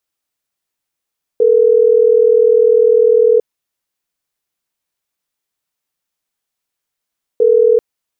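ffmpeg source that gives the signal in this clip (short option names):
-f lavfi -i "aevalsrc='0.335*(sin(2*PI*440*t)+sin(2*PI*480*t))*clip(min(mod(t,6),2-mod(t,6))/0.005,0,1)':d=6.39:s=44100"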